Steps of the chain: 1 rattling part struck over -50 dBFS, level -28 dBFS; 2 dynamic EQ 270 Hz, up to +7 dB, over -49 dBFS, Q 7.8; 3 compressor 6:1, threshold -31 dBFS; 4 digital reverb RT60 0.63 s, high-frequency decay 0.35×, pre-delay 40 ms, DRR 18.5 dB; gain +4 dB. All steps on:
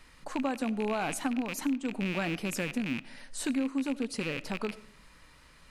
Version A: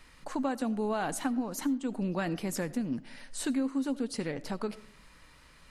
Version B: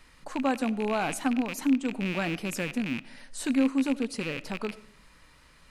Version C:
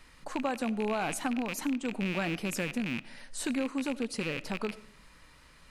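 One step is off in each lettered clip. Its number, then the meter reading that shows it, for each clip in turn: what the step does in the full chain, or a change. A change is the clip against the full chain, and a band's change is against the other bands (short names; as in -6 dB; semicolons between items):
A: 1, 2 kHz band -5.0 dB; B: 3, mean gain reduction 1.5 dB; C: 2, 250 Hz band -1.5 dB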